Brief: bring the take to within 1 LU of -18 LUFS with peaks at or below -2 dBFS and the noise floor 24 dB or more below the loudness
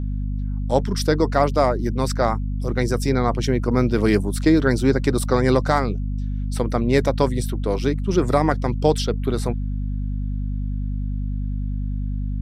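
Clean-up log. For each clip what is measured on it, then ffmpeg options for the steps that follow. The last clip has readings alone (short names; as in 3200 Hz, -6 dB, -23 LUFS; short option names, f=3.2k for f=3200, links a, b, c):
hum 50 Hz; harmonics up to 250 Hz; hum level -22 dBFS; loudness -22.0 LUFS; peak -3.5 dBFS; loudness target -18.0 LUFS
-> -af "bandreject=f=50:t=h:w=4,bandreject=f=100:t=h:w=4,bandreject=f=150:t=h:w=4,bandreject=f=200:t=h:w=4,bandreject=f=250:t=h:w=4"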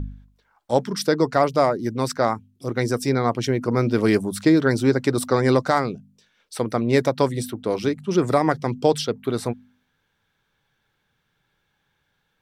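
hum none; loudness -22.0 LUFS; peak -4.5 dBFS; loudness target -18.0 LUFS
-> -af "volume=4dB,alimiter=limit=-2dB:level=0:latency=1"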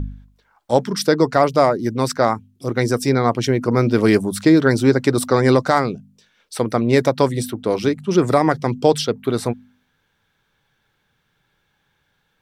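loudness -18.0 LUFS; peak -2.0 dBFS; noise floor -68 dBFS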